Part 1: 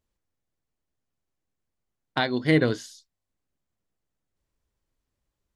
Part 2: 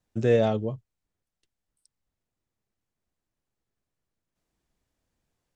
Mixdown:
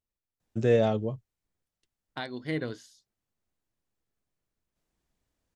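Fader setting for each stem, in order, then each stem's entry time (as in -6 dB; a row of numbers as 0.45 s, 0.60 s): -11.5 dB, -1.5 dB; 0.00 s, 0.40 s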